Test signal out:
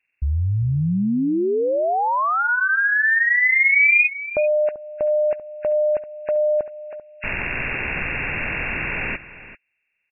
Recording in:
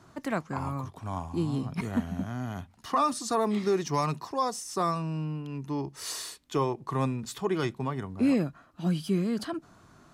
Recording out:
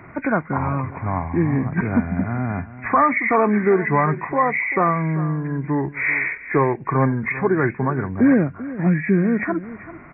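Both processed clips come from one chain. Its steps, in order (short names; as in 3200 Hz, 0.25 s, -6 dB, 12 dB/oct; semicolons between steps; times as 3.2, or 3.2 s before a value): nonlinear frequency compression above 1400 Hz 4:1; in parallel at -2 dB: compressor, threshold -37 dBFS; on the sum: echo 0.39 s -15.5 dB; gain +8 dB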